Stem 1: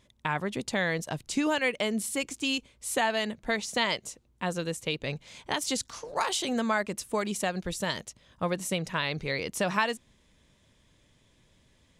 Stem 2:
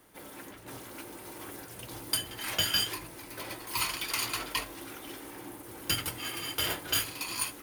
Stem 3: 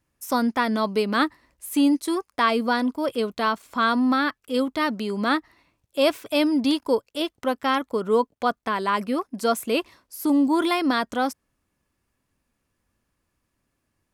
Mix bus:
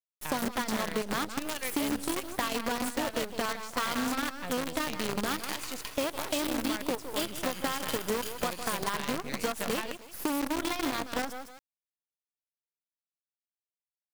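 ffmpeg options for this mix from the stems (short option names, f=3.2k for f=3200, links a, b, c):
-filter_complex "[0:a]highpass=f=47:w=0.5412,highpass=f=47:w=1.3066,volume=-6.5dB[a];[1:a]acompressor=threshold=-38dB:ratio=2,adelay=1300,volume=0dB,asplit=3[b][c][d];[b]atrim=end=2.51,asetpts=PTS-STARTPTS,afade=t=out:st=2.506:d=0.004:c=hsin[e];[c]atrim=start=2.51:end=5.24,asetpts=PTS-STARTPTS,volume=0[f];[d]atrim=start=5.24,asetpts=PTS-STARTPTS,afade=t=in:d=0.004:c=hsin[g];[e][f][g]concat=n=3:v=0:a=1,asplit=2[h][i];[i]volume=-10dB[j];[2:a]acompressor=threshold=-25dB:ratio=4,volume=-1dB,asplit=2[k][l];[l]volume=-9dB[m];[j][m]amix=inputs=2:normalize=0,aecho=0:1:158|316|474|632:1|0.26|0.0676|0.0176[n];[a][h][k][n]amix=inputs=4:normalize=0,acrusher=bits=5:dc=4:mix=0:aa=0.000001,acompressor=threshold=-26dB:ratio=6"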